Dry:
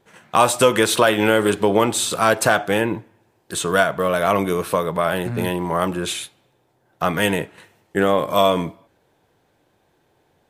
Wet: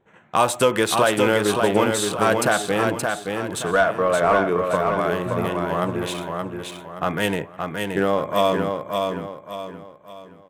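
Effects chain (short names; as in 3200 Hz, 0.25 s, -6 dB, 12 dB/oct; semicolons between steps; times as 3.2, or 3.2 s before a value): Wiener smoothing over 9 samples; 3.73–4.59 overdrive pedal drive 14 dB, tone 1200 Hz, clips at -1.5 dBFS; feedback echo 0.573 s, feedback 38%, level -4.5 dB; gain -3 dB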